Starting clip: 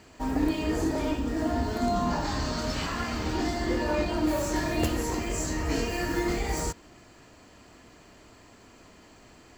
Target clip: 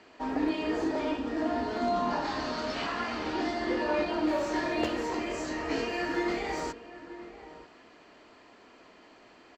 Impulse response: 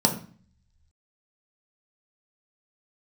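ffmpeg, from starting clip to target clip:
-filter_complex "[0:a]acrossover=split=240 5100:gain=0.141 1 0.0631[a][b][c];[a][b][c]amix=inputs=3:normalize=0,asplit=2[d][e];[e]adelay=932.9,volume=-14dB,highshelf=f=4k:g=-21[f];[d][f]amix=inputs=2:normalize=0"

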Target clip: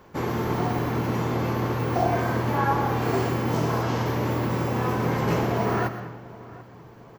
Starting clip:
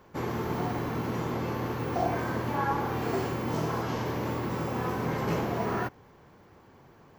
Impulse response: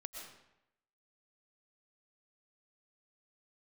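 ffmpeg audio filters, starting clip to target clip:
-filter_complex "[0:a]asplit=2[a][b];[b]adelay=742,lowpass=f=2k:p=1,volume=-19dB,asplit=2[c][d];[d]adelay=742,lowpass=f=2k:p=1,volume=0.41,asplit=2[e][f];[f]adelay=742,lowpass=f=2k:p=1,volume=0.41[g];[a][c][e][g]amix=inputs=4:normalize=0,asplit=2[h][i];[1:a]atrim=start_sample=2205[j];[i][j]afir=irnorm=-1:irlink=0,volume=2.5dB[k];[h][k]amix=inputs=2:normalize=0"

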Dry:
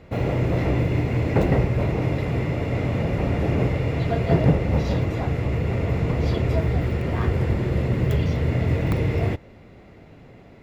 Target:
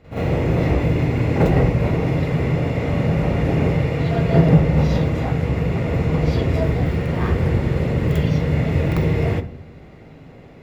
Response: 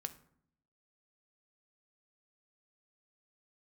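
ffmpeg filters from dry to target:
-filter_complex "[0:a]asplit=2[a][b];[1:a]atrim=start_sample=2205,adelay=45[c];[b][c]afir=irnorm=-1:irlink=0,volume=10dB[d];[a][d]amix=inputs=2:normalize=0,volume=-5dB"

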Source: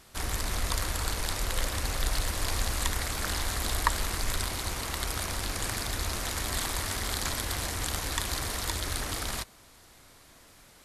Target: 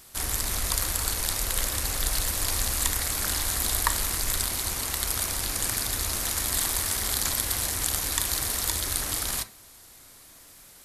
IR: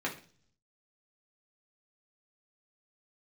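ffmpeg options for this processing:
-filter_complex "[0:a]aemphasis=mode=production:type=50kf,asplit=2[a][b];[1:a]atrim=start_sample=2205,adelay=30[c];[b][c]afir=irnorm=-1:irlink=0,volume=-18dB[d];[a][d]amix=inputs=2:normalize=0,volume=-1dB"

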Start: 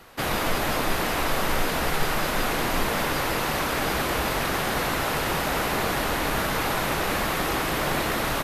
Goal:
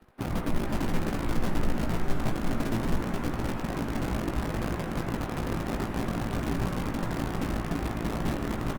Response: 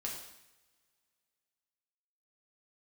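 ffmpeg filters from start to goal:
-filter_complex "[0:a]bandreject=f=470:w=12,acrossover=split=3900[a][b];[b]acompressor=threshold=-49dB:ratio=4:attack=1:release=60[c];[a][c]amix=inputs=2:normalize=0,firequalizer=gain_entry='entry(110,0);entry(230,1);entry(540,-12);entry(6400,-27)':delay=0.05:min_phase=1,acrossover=split=310[d][e];[d]acrusher=bits=6:dc=4:mix=0:aa=0.000001[f];[f][e]amix=inputs=2:normalize=0,asplit=2[g][h];[h]adelay=17,volume=-6dB[i];[g][i]amix=inputs=2:normalize=0,asplit=2[j][k];[k]aecho=0:1:328|656|984|1312|1640|1968:0.2|0.114|0.0648|0.037|0.0211|0.012[l];[j][l]amix=inputs=2:normalize=0,asetrate=42336,aresample=44100" -ar 48000 -c:a libopus -b:a 32k

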